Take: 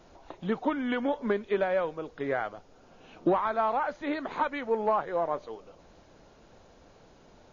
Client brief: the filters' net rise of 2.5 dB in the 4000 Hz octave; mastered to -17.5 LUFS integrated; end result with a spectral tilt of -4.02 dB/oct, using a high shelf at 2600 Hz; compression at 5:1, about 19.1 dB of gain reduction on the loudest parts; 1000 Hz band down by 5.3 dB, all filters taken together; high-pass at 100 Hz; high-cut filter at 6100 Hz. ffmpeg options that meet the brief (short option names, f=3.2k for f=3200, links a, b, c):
-af "highpass=100,lowpass=6.1k,equalizer=f=1k:t=o:g=-6.5,highshelf=f=2.6k:g=-4,equalizer=f=4k:t=o:g=7.5,acompressor=threshold=-44dB:ratio=5,volume=29.5dB"